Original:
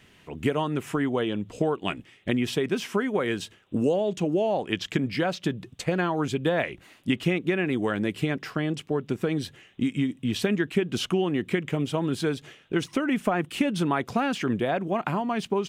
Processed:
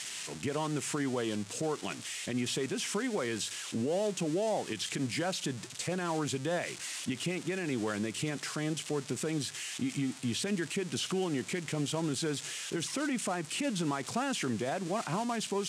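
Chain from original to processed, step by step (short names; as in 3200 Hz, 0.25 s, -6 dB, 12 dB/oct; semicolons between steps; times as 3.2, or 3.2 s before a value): switching spikes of -21.5 dBFS; limiter -19 dBFS, peak gain reduction 9 dB; elliptic band-pass 110–8300 Hz, stop band 70 dB; gain -4.5 dB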